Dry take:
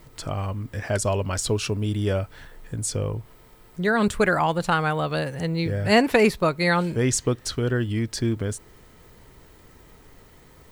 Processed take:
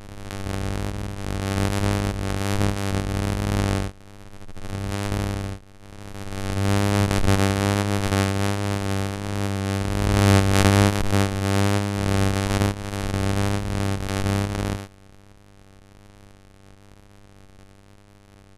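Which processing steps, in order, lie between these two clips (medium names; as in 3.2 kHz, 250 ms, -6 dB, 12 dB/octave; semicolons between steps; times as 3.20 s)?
sorted samples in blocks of 256 samples; wow and flutter 28 cents; band-stop 1.7 kHz, Q 28; speed mistake 78 rpm record played at 45 rpm; swell ahead of each attack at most 27 dB/s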